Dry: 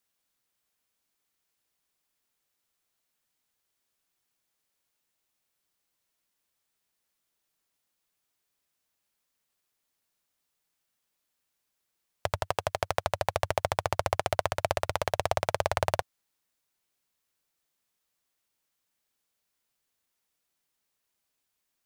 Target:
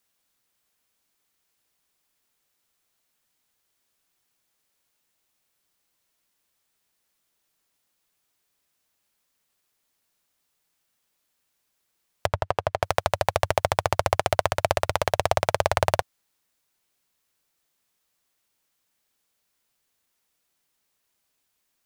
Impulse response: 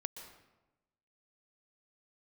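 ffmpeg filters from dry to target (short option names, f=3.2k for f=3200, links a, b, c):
-filter_complex "[0:a]asettb=1/sr,asplit=3[a][b][c];[a]atrim=end=12.264[d];[b]atrim=start=12.26:end=12.83,asetpts=PTS-STARTPTS,afade=t=in:d=0.004:c=qsin,afade=t=out:st=0.566:d=0.004:c=qsin,lowpass=f=1.8k:p=1[e];[c]atrim=start=12.826[f];[d][e]acrossfade=d=0.004:c1=hsin:c2=qsin[g];[g][f]acrossfade=d=0.004:c1=qsin:c2=hsin,volume=5.5dB"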